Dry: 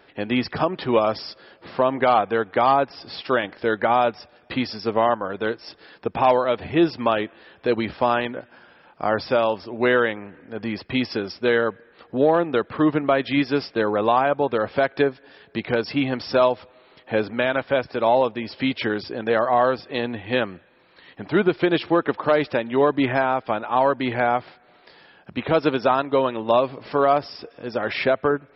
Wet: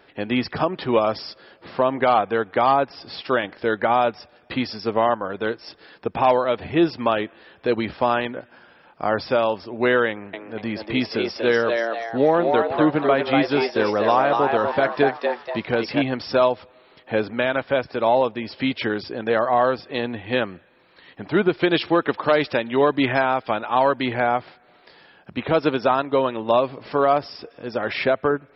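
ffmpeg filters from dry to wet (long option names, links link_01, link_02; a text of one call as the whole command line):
ffmpeg -i in.wav -filter_complex "[0:a]asettb=1/sr,asplit=3[link_01][link_02][link_03];[link_01]atrim=end=10.094[link_04];[link_02]atrim=start=10.09:end=16.02,asetpts=PTS-STARTPTS,afade=type=in:duration=0.004:curve=qsin,afade=type=out:start_time=5.926:duration=0.004:curve=qsin,asplit=6[link_05][link_06][link_07][link_08][link_09][link_10];[link_06]adelay=241,afreqshift=110,volume=-4dB[link_11];[link_07]adelay=482,afreqshift=220,volume=-11.5dB[link_12];[link_08]adelay=723,afreqshift=330,volume=-19.1dB[link_13];[link_09]adelay=964,afreqshift=440,volume=-26.6dB[link_14];[link_10]adelay=1205,afreqshift=550,volume=-34.1dB[link_15];[link_05][link_11][link_12][link_13][link_14][link_15]amix=inputs=6:normalize=0,atrim=end_sample=261513[link_16];[link_03]atrim=start=16.016[link_17];[link_04][link_16]acrossfade=duration=0.004:curve1=hsin:curve2=qsin[link_18];[link_18][link_17]acrossfade=duration=0.004:curve1=qsin:curve2=hsin,asettb=1/sr,asplit=3[link_19][link_20][link_21];[link_19]atrim=end=21.624[link_22];[link_20]atrim=start=21.62:end=24.06,asetpts=PTS-STARTPTS,afade=type=in:duration=0.004:curve=qsin,afade=type=out:start_time=2.436:duration=0.004:curve=qsin,highshelf=frequency=2600:gain=7.5[link_23];[link_21]atrim=start=24.056[link_24];[link_22][link_23]acrossfade=duration=0.004:curve1=hsin:curve2=qsin[link_25];[link_25][link_24]acrossfade=duration=0.004:curve1=qsin:curve2=hsin" out.wav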